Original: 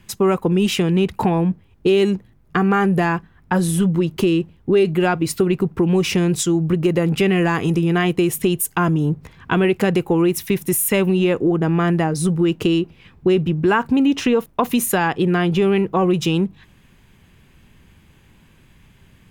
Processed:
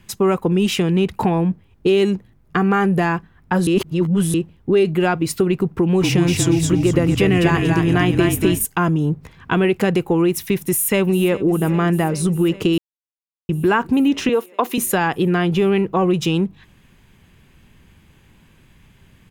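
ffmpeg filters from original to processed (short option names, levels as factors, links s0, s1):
-filter_complex "[0:a]asettb=1/sr,asplit=3[s0][s1][s2];[s0]atrim=end=5.774[s3];[s1]atrim=start=5.77:end=8.65,asetpts=PTS-STARTPTS,afade=t=in:d=0.004:c=qsin,afade=t=out:st=2.876:d=0.004:c=qsin,asplit=6[s4][s5][s6][s7][s8][s9];[s5]adelay=237,afreqshift=-39,volume=0.668[s10];[s6]adelay=474,afreqshift=-78,volume=0.254[s11];[s7]adelay=711,afreqshift=-117,volume=0.0966[s12];[s8]adelay=948,afreqshift=-156,volume=0.0367[s13];[s9]adelay=1185,afreqshift=-195,volume=0.014[s14];[s4][s10][s11][s12][s13][s14]amix=inputs=6:normalize=0,atrim=end_sample=127008[s15];[s2]atrim=start=8.646[s16];[s3][s15]acrossfade=d=0.004:c1=hsin:c2=qsin[s17];[s17][s16]acrossfade=d=0.004:c1=qsin:c2=hsin,asplit=2[s18][s19];[s19]afade=t=in:st=10.68:d=0.01,afade=t=out:st=11.47:d=0.01,aecho=0:1:400|800|1200|1600|2000|2400|2800|3200|3600|4000|4400|4800:0.141254|0.113003|0.0904024|0.0723219|0.0578575|0.046286|0.0370288|0.0296231|0.0236984|0.0189588|0.015167|0.0121336[s20];[s18][s20]amix=inputs=2:normalize=0,asettb=1/sr,asplit=3[s21][s22][s23];[s21]atrim=end=14.294[s24];[s22]atrim=start=14.29:end=14.78,asetpts=PTS-STARTPTS,afade=t=in:d=0.004:c=qsin,afade=t=out:st=0.486:d=0.004:c=qsin,highpass=f=270:w=0.5412,highpass=f=270:w=1.3066[s25];[s23]atrim=start=14.776[s26];[s24][s25]acrossfade=d=0.004:c1=hsin:c2=qsin[s27];[s27][s26]acrossfade=d=0.004:c1=qsin:c2=hsin,asplit=5[s28][s29][s30][s31][s32];[s28]atrim=end=3.672[s33];[s29]atrim=start=3.668:end=4.342,asetpts=PTS-STARTPTS,areverse[s34];[s30]atrim=start=4.338:end=12.78,asetpts=PTS-STARTPTS,afade=t=out:st=8.438:d=0.004:c=hsin[s35];[s31]atrim=start=12.78:end=13.49,asetpts=PTS-STARTPTS,volume=0[s36];[s32]atrim=start=13.49,asetpts=PTS-STARTPTS,afade=t=in:d=0.004:c=hsin[s37];[s33][s34]acrossfade=d=0.004:c1=hsin:c2=hsin[s38];[s35][s36][s37]concat=n=3:v=0:a=1[s39];[s38][s39]acrossfade=d=0.004:c1=hsin:c2=hsin"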